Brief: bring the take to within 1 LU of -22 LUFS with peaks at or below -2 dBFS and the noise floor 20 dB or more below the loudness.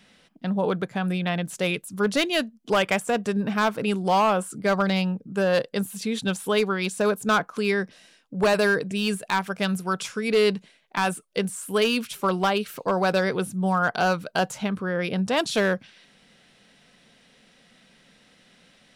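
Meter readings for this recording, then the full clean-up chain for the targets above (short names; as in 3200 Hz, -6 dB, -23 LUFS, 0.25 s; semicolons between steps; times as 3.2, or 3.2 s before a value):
clipped 0.9%; flat tops at -15.0 dBFS; loudness -24.5 LUFS; peak -15.0 dBFS; loudness target -22.0 LUFS
-> clip repair -15 dBFS; gain +2.5 dB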